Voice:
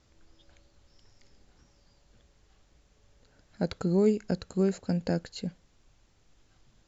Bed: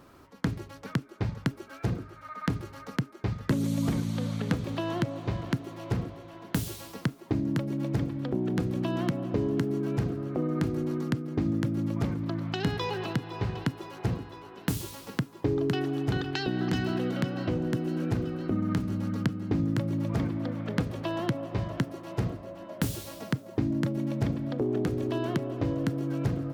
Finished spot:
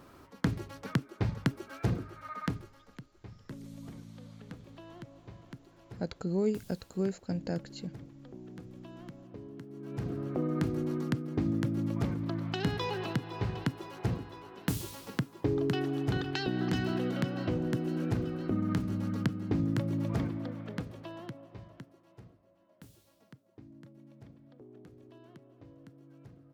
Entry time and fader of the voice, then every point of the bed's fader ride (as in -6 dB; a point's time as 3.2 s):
2.40 s, -5.5 dB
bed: 2.38 s -0.5 dB
2.87 s -18.5 dB
9.69 s -18.5 dB
10.16 s -2.5 dB
20.13 s -2.5 dB
22.33 s -25 dB